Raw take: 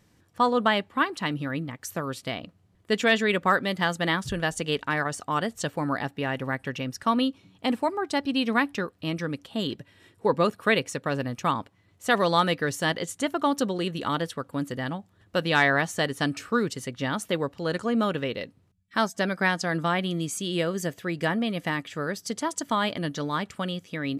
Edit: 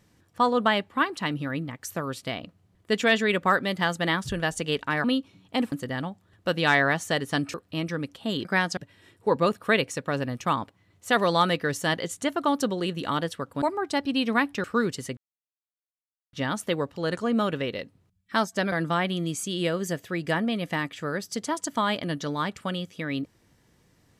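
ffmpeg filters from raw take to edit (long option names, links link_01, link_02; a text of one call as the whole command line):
ffmpeg -i in.wav -filter_complex "[0:a]asplit=10[link_01][link_02][link_03][link_04][link_05][link_06][link_07][link_08][link_09][link_10];[link_01]atrim=end=5.042[link_11];[link_02]atrim=start=7.138:end=7.822[link_12];[link_03]atrim=start=14.598:end=16.422[link_13];[link_04]atrim=start=8.838:end=9.752[link_14];[link_05]atrim=start=19.338:end=19.662[link_15];[link_06]atrim=start=9.748:end=14.602[link_16];[link_07]atrim=start=7.818:end=8.842[link_17];[link_08]atrim=start=16.418:end=16.95,asetpts=PTS-STARTPTS,afade=type=out:start_time=0.528:duration=0.004:curve=hsin,apad=pad_dur=1.16[link_18];[link_09]atrim=start=16.95:end=19.342,asetpts=PTS-STARTPTS,afade=type=in:duration=0.004:curve=hsin[link_19];[link_10]atrim=start=19.658[link_20];[link_11][link_12]acrossfade=duration=0.004:curve1=hsin:curve2=hsin[link_21];[link_21][link_13]acrossfade=duration=0.004:curve1=hsin:curve2=hsin[link_22];[link_22][link_14]acrossfade=duration=0.004:curve1=hsin:curve2=hsin[link_23];[link_23][link_15]acrossfade=duration=0.004:curve1=hsin:curve2=hsin[link_24];[link_24][link_16]acrossfade=duration=0.004:curve1=hsin:curve2=hsin[link_25];[link_25][link_17]acrossfade=duration=0.004:curve1=hsin:curve2=hsin[link_26];[link_18][link_19]concat=n=2:v=0:a=1[link_27];[link_26][link_27]acrossfade=duration=0.004:curve1=hsin:curve2=hsin[link_28];[link_28][link_20]acrossfade=duration=0.004:curve1=hsin:curve2=hsin" out.wav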